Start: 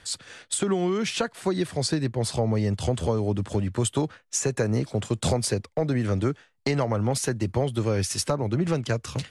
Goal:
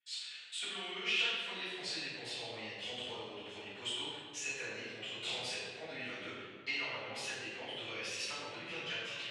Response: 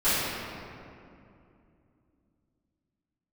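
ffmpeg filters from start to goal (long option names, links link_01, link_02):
-filter_complex "[0:a]agate=range=-24dB:threshold=-43dB:ratio=16:detection=peak,bandpass=frequency=2800:width_type=q:width=3.7:csg=0[link_01];[1:a]atrim=start_sample=2205,asetrate=70560,aresample=44100[link_02];[link_01][link_02]afir=irnorm=-1:irlink=0,volume=-7dB"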